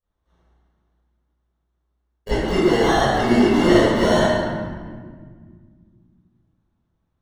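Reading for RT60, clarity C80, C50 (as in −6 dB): 1.7 s, −2.0 dB, −6.5 dB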